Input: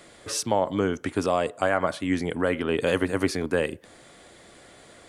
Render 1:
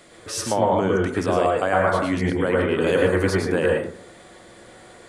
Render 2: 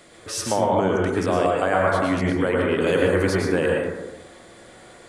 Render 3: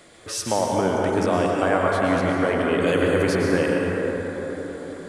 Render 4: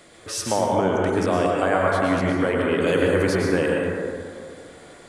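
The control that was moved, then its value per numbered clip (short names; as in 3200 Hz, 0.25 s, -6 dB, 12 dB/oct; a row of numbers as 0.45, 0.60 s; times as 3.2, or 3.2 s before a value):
plate-style reverb, RT60: 0.52, 1.1, 5.1, 2.3 s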